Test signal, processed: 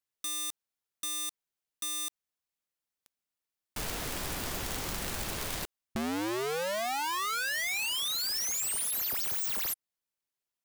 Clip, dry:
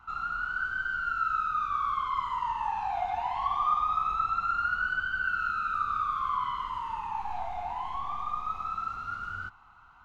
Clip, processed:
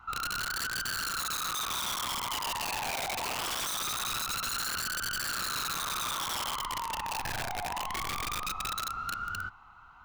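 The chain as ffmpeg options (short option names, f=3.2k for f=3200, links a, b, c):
-af "aeval=exprs='(mod(25.1*val(0)+1,2)-1)/25.1':c=same,acompressor=threshold=-33dB:ratio=6,volume=2dB"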